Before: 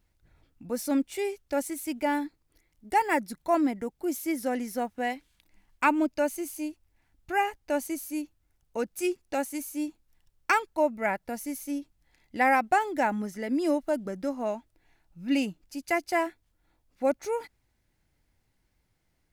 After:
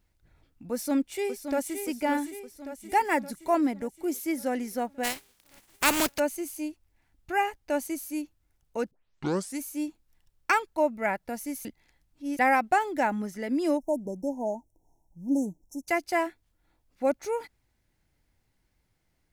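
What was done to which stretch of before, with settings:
0.72–1.82 s: echo throw 570 ms, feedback 60%, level -8 dB
5.03–6.18 s: spectral contrast reduction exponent 0.39
8.91 s: tape start 0.68 s
11.65–12.39 s: reverse
13.77–15.88 s: brick-wall FIR band-stop 1–5.3 kHz

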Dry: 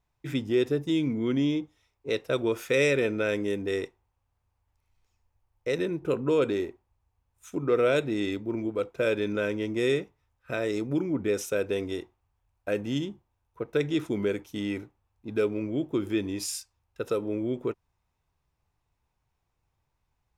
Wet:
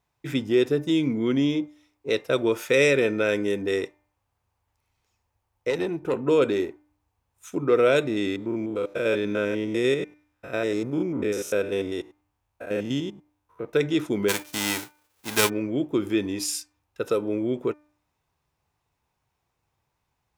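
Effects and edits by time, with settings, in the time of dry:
5.70–6.28 s: valve stage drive 20 dB, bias 0.4
8.07–13.65 s: spectrogram pixelated in time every 100 ms
14.28–15.48 s: formants flattened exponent 0.3
whole clip: high-pass 140 Hz 6 dB/octave; de-hum 299 Hz, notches 8; trim +4.5 dB

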